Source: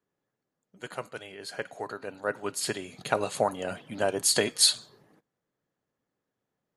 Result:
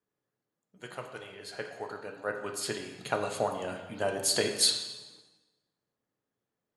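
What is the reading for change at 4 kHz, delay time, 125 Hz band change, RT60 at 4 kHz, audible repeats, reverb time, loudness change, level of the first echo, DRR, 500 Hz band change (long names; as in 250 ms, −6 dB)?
−2.5 dB, no echo audible, −2.0 dB, 1.0 s, no echo audible, 1.1 s, −3.5 dB, no echo audible, 3.5 dB, −3.0 dB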